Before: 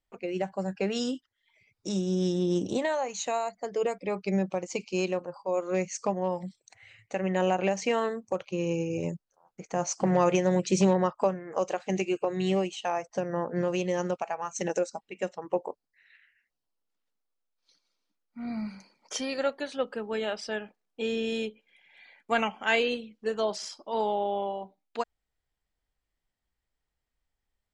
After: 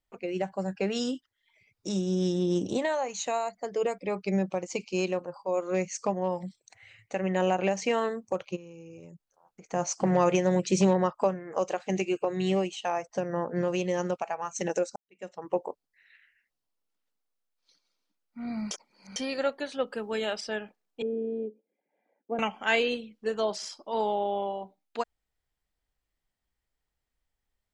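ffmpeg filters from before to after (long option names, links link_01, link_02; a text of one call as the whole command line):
ffmpeg -i in.wav -filter_complex "[0:a]asplit=3[link_01][link_02][link_03];[link_01]afade=type=out:start_time=8.55:duration=0.02[link_04];[link_02]acompressor=threshold=-44dB:ratio=8:attack=3.2:release=140:knee=1:detection=peak,afade=type=in:start_time=8.55:duration=0.02,afade=type=out:start_time=9.71:duration=0.02[link_05];[link_03]afade=type=in:start_time=9.71:duration=0.02[link_06];[link_04][link_05][link_06]amix=inputs=3:normalize=0,asettb=1/sr,asplit=3[link_07][link_08][link_09];[link_07]atrim=end=19.924[link_10];[link_08]atrim=start=19.92:end=20.41,asetpts=PTS-STARTPTS,afade=type=in:duration=0.004:curve=qsin,afade=type=out:start_time=0.486:duration=0.004:curve=qsin,highshelf=frequency=4600:gain=9[link_11];[link_09]atrim=start=20.406[link_12];[link_10][link_11]acrossfade=duration=0.004:curve1=hsin:curve2=qsin[link_13];[link_13][link_12]acrossfade=duration=0.004:curve1=qsin:curve2=hsin,asettb=1/sr,asplit=3[link_14][link_15][link_16];[link_14]atrim=end=21.024[link_17];[link_15]atrim=start=21.02:end=22.39,asetpts=PTS-STARTPTS,afade=type=in:duration=0.004:curve=qsin,afade=type=out:start_time=1.366:duration=0.004:curve=qsin,asuperpass=centerf=360:order=4:qfactor=1[link_18];[link_16]atrim=start=22.386[link_19];[link_17][link_18]acrossfade=duration=0.004:curve1=hsin:curve2=qsin[link_20];[link_20][link_19]acrossfade=duration=0.004:curve1=qsin:curve2=hsin,asplit=4[link_21][link_22][link_23][link_24];[link_21]atrim=end=14.96,asetpts=PTS-STARTPTS,afade=type=out:start_time=14.956:duration=0.004:curve=hsin[link_25];[link_22]atrim=start=14.96:end=18.712,asetpts=PTS-STARTPTS,afade=type=in:duration=0.48:curve=qua[link_26];[link_23]atrim=start=18.708:end=19.162,asetpts=PTS-STARTPTS,areverse[link_27];[link_24]atrim=start=19.158[link_28];[link_25][link_26]concat=n=2:v=0:a=1[link_29];[link_29][link_27]acrossfade=duration=0.004:curve1=hsin:curve2=hsin[link_30];[link_30][link_28]acrossfade=duration=0.004:curve1=hsin:curve2=hsin" out.wav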